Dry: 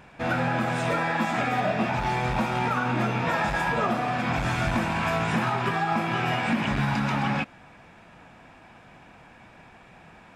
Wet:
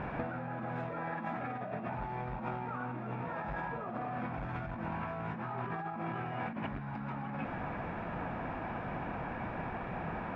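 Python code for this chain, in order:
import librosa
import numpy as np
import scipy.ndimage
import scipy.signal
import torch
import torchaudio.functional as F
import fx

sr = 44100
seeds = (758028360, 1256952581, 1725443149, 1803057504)

y = scipy.signal.sosfilt(scipy.signal.butter(2, 1500.0, 'lowpass', fs=sr, output='sos'), x)
y = fx.over_compress(y, sr, threshold_db=-39.0, ratio=-1.0)
y = y * 10.0 ** (1.0 / 20.0)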